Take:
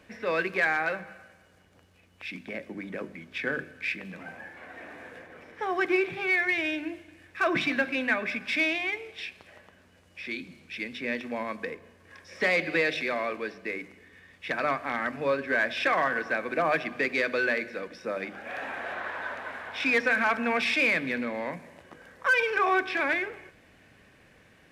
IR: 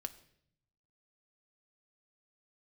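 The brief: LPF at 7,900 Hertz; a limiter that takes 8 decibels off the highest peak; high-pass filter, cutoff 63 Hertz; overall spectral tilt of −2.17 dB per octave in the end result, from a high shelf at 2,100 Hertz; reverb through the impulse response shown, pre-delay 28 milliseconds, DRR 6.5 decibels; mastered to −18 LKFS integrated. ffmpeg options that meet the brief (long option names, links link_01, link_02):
-filter_complex "[0:a]highpass=63,lowpass=7900,highshelf=frequency=2100:gain=-5,alimiter=limit=-22.5dB:level=0:latency=1,asplit=2[link_01][link_02];[1:a]atrim=start_sample=2205,adelay=28[link_03];[link_02][link_03]afir=irnorm=-1:irlink=0,volume=-4dB[link_04];[link_01][link_04]amix=inputs=2:normalize=0,volume=14dB"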